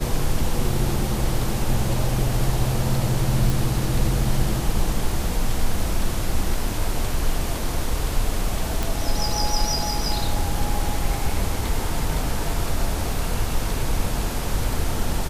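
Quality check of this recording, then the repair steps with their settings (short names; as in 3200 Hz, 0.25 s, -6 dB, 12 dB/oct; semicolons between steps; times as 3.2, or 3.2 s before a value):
3.5 pop
8.83 pop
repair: de-click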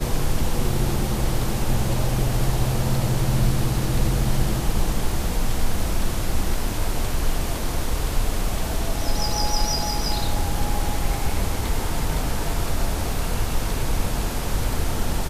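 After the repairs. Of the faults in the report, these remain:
none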